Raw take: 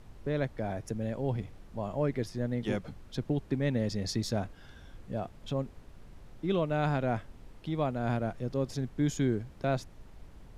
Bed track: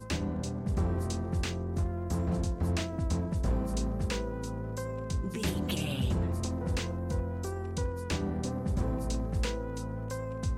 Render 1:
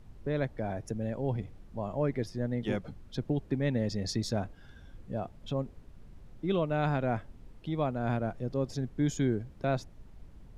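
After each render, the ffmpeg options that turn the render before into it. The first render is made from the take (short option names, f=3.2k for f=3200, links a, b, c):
-af "afftdn=nr=6:nf=-52"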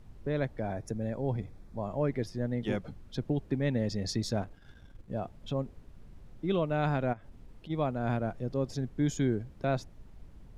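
-filter_complex "[0:a]asettb=1/sr,asplit=3[a][b][c];[a]atrim=end=0.664[d];[b]atrim=start=0.66:end=1.92,asetpts=PTS-STARTPTS,afade=t=in:d=0.004:c=qsin,afade=t=out:st=1.256:d=0.004:c=qsin,bandreject=f=2.9k:w=5.3[e];[c]atrim=start=1.916[f];[d][e]acrossfade=d=0.004:c1=hsin:c2=qsin[g];[g][f]acrossfade=d=0.004:c1=qsin:c2=hsin,asettb=1/sr,asplit=3[h][i][j];[h]atrim=end=4.414[k];[i]atrim=start=4.41:end=5.11,asetpts=PTS-STARTPTS,afade=t=in:d=0.004:c=qsin,afade=t=out:st=0.696:d=0.004:c=qsin,aeval=exprs='if(lt(val(0),0),0.447*val(0),val(0))':c=same[l];[j]atrim=start=5.106[m];[k][l]acrossfade=d=0.004:c1=hsin:c2=qsin[n];[n][m]acrossfade=d=0.004:c1=qsin:c2=hsin,asplit=3[o][p][q];[o]afade=t=out:st=7.12:d=0.02[r];[p]acompressor=threshold=-43dB:ratio=12:attack=3.2:release=140:knee=1:detection=peak,afade=t=in:st=7.12:d=0.02,afade=t=out:st=7.69:d=0.02[s];[q]afade=t=in:st=7.69:d=0.02[t];[r][s][t]amix=inputs=3:normalize=0"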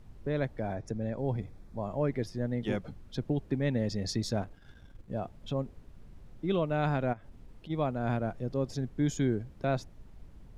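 -filter_complex "[0:a]asettb=1/sr,asplit=3[a][b][c];[a]atrim=end=0.754[d];[b]atrim=start=0.75:end=1.18,asetpts=PTS-STARTPTS,afade=t=in:d=0.004:c=qsin,afade=t=out:st=0.426:d=0.004:c=qsin,lowpass=6.6k[e];[c]atrim=start=1.176[f];[d][e]acrossfade=d=0.004:c1=hsin:c2=qsin[g];[g][f]acrossfade=d=0.004:c1=qsin:c2=hsin"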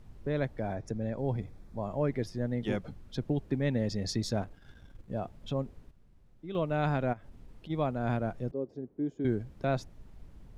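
-filter_complex "[0:a]asettb=1/sr,asplit=3[a][b][c];[a]atrim=end=8.514[d];[b]atrim=start=8.51:end=9.25,asetpts=PTS-STARTPTS,afade=t=in:d=0.004:c=qsin,afade=t=out:st=0.736:d=0.004:c=qsin,bandpass=f=380:t=q:w=1.8[e];[c]atrim=start=9.246[f];[d][e]acrossfade=d=0.004:c1=hsin:c2=qsin[g];[g][f]acrossfade=d=0.004:c1=qsin:c2=hsin,asplit=3[h][i][j];[h]atrim=end=5.91,asetpts=PTS-STARTPTS,afade=t=out:st=5.56:d=0.35:c=log:silence=0.298538[k];[i]atrim=start=5.91:end=6.55,asetpts=PTS-STARTPTS,volume=-10.5dB[l];[j]atrim=start=6.55,asetpts=PTS-STARTPTS,afade=t=in:d=0.35:c=log:silence=0.298538[m];[k][l][m]concat=n=3:v=0:a=1"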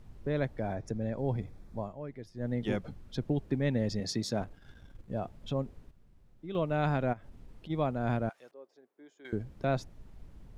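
-filter_complex "[0:a]asettb=1/sr,asplit=3[a][b][c];[a]atrim=end=4.004[d];[b]atrim=start=4:end=4.41,asetpts=PTS-STARTPTS,afade=t=in:d=0.004:c=qsin,afade=t=out:st=0.406:d=0.004:c=qsin,highpass=130[e];[c]atrim=start=4.406[f];[d][e]acrossfade=d=0.004:c1=hsin:c2=qsin[g];[g][f]acrossfade=d=0.004:c1=qsin:c2=hsin,asettb=1/sr,asplit=3[h][i][j];[h]atrim=end=8.294[k];[i]atrim=start=8.29:end=9.33,asetpts=PTS-STARTPTS,afade=t=in:d=0.004:c=qsin,afade=t=out:st=1.036:d=0.004:c=qsin,highpass=1.1k[l];[j]atrim=start=9.326[m];[k][l]acrossfade=d=0.004:c1=hsin:c2=qsin[n];[n][m]acrossfade=d=0.004:c1=qsin:c2=hsin,asplit=3[o][p][q];[o]atrim=end=1.94,asetpts=PTS-STARTPTS,afade=t=out:st=1.79:d=0.15:silence=0.251189[r];[p]atrim=start=1.94:end=2.34,asetpts=PTS-STARTPTS,volume=-12dB[s];[q]atrim=start=2.34,asetpts=PTS-STARTPTS,afade=t=in:d=0.15:silence=0.251189[t];[r][s][t]concat=n=3:v=0:a=1"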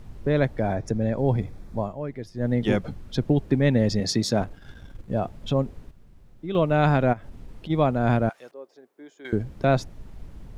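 -af "volume=9.5dB"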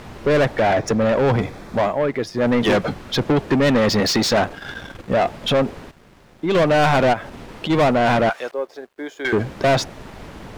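-filter_complex "[0:a]asplit=2[a][b];[b]highpass=f=720:p=1,volume=28dB,asoftclip=type=tanh:threshold=-8.5dB[c];[a][c]amix=inputs=2:normalize=0,lowpass=f=3.3k:p=1,volume=-6dB,aeval=exprs='sgn(val(0))*max(abs(val(0))-0.00211,0)':c=same"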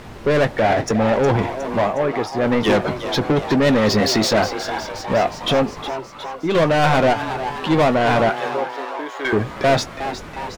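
-filter_complex "[0:a]asplit=2[a][b];[b]adelay=19,volume=-12.5dB[c];[a][c]amix=inputs=2:normalize=0,asplit=2[d][e];[e]asplit=8[f][g][h][i][j][k][l][m];[f]adelay=362,afreqshift=130,volume=-11dB[n];[g]adelay=724,afreqshift=260,volume=-15dB[o];[h]adelay=1086,afreqshift=390,volume=-19dB[p];[i]adelay=1448,afreqshift=520,volume=-23dB[q];[j]adelay=1810,afreqshift=650,volume=-27.1dB[r];[k]adelay=2172,afreqshift=780,volume=-31.1dB[s];[l]adelay=2534,afreqshift=910,volume=-35.1dB[t];[m]adelay=2896,afreqshift=1040,volume=-39.1dB[u];[n][o][p][q][r][s][t][u]amix=inputs=8:normalize=0[v];[d][v]amix=inputs=2:normalize=0"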